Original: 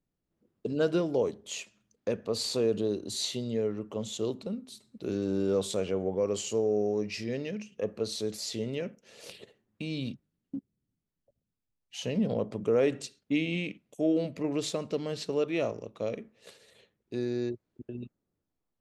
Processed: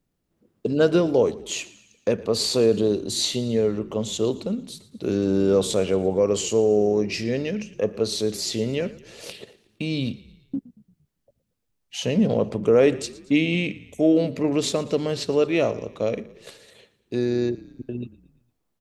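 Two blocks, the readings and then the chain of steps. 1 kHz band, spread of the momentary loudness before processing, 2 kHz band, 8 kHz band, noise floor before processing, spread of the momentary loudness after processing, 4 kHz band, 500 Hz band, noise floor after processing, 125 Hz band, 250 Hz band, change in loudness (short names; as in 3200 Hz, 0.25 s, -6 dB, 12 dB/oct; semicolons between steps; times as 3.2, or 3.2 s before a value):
+8.5 dB, 15 LU, +8.5 dB, +8.5 dB, -85 dBFS, 15 LU, +8.5 dB, +8.5 dB, -75 dBFS, +8.5 dB, +8.5 dB, +8.5 dB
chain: frequency-shifting echo 0.115 s, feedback 52%, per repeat -31 Hz, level -19.5 dB; gain +8.5 dB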